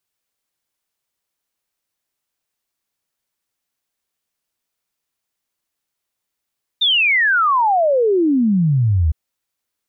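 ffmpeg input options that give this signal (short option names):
-f lavfi -i "aevalsrc='0.251*clip(min(t,2.31-t)/0.01,0,1)*sin(2*PI*3700*2.31/log(73/3700)*(exp(log(73/3700)*t/2.31)-1))':d=2.31:s=44100"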